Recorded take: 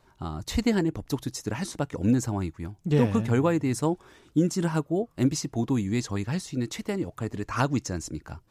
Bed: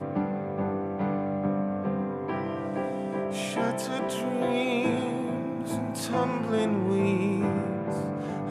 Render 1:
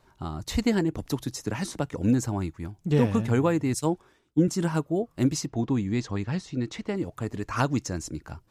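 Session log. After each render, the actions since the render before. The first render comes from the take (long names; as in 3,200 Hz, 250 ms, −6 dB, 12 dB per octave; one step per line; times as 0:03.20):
0:00.98–0:01.90: multiband upward and downward compressor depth 40%
0:03.74–0:04.48: multiband upward and downward expander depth 100%
0:05.46–0:06.96: high-frequency loss of the air 93 metres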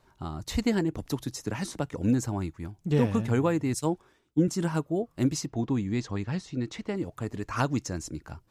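level −2 dB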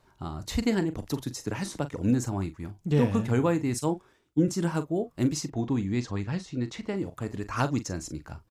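double-tracking delay 41 ms −12 dB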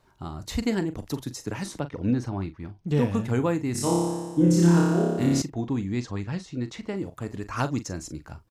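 0:01.80–0:02.88: Savitzky-Golay smoothing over 15 samples
0:03.72–0:05.42: flutter between parallel walls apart 5 metres, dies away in 1.4 s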